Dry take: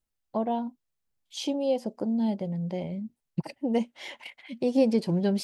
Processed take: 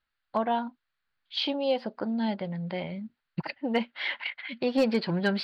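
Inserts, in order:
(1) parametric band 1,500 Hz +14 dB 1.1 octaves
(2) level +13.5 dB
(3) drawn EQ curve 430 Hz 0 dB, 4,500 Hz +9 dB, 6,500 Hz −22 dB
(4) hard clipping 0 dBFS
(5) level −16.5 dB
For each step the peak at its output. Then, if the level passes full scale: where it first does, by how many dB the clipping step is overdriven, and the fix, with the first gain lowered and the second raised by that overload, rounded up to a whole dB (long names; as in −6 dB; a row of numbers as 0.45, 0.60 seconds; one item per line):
−10.0, +3.5, +4.5, 0.0, −16.5 dBFS
step 2, 4.5 dB
step 2 +8.5 dB, step 5 −11.5 dB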